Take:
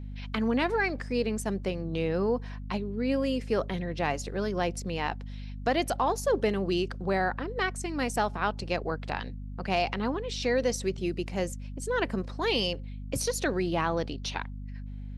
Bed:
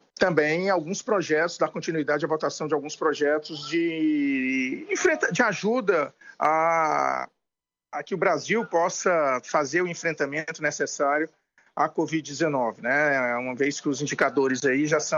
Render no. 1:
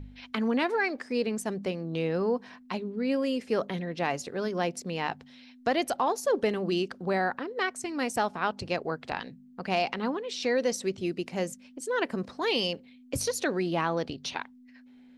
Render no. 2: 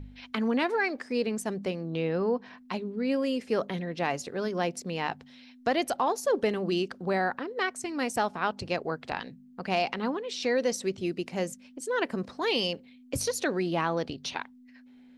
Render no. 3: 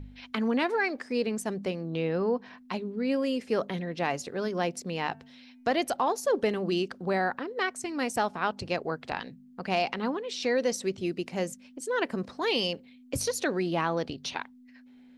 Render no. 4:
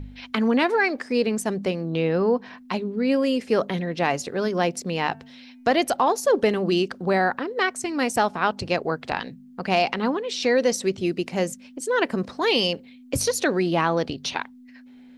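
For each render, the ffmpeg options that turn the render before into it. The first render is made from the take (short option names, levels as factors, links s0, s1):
-af "bandreject=f=50:t=h:w=4,bandreject=f=100:t=h:w=4,bandreject=f=150:t=h:w=4,bandreject=f=200:t=h:w=4"
-filter_complex "[0:a]asettb=1/sr,asplit=3[s0][s1][s2];[s0]atrim=end=1.904[s3];[s1]atrim=start=1.9:end=2.58,asetpts=PTS-STARTPTS,afade=t=in:d=0.004:c=qsin,afade=t=out:st=0.676:d=0.004:c=qsin,lowpass=4700[s4];[s2]atrim=start=2.576[s5];[s3][s4]acrossfade=d=0.004:c1=hsin:c2=qsin[s6];[s6][s5]acrossfade=d=0.004:c1=qsin:c2=hsin"
-filter_complex "[0:a]asettb=1/sr,asplit=3[s0][s1][s2];[s0]atrim=end=5.114[s3];[s1]atrim=start=5.11:end=5.77,asetpts=PTS-STARTPTS,afade=t=in:d=0.004:c=qsin,afade=t=out:st=0.656:d=0.004:c=qsin,bandreject=f=224.6:t=h:w=4,bandreject=f=449.2:t=h:w=4,bandreject=f=673.8:t=h:w=4,bandreject=f=898.4:t=h:w=4,bandreject=f=1123:t=h:w=4,bandreject=f=1347.6:t=h:w=4,bandreject=f=1572.2:t=h:w=4,bandreject=f=1796.8:t=h:w=4,bandreject=f=2021.4:t=h:w=4,bandreject=f=2246:t=h:w=4,bandreject=f=2470.6:t=h:w=4,bandreject=f=2695.2:t=h:w=4,bandreject=f=2919.8:t=h:w=4[s4];[s2]atrim=start=5.766[s5];[s3][s4]acrossfade=d=0.004:c1=hsin:c2=qsin[s6];[s6][s5]acrossfade=d=0.004:c1=qsin:c2=hsin"
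-af "volume=2.11"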